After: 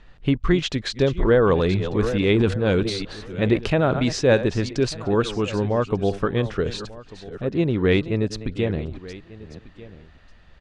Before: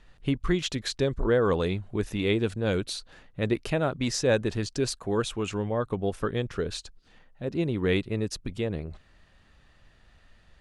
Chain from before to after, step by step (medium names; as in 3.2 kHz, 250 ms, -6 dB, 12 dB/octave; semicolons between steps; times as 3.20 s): chunks repeated in reverse 436 ms, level -13.5 dB; 1.58–4.00 s: transient shaper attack 0 dB, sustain +8 dB; distance through air 100 m; delay 1193 ms -19 dB; trim +6.5 dB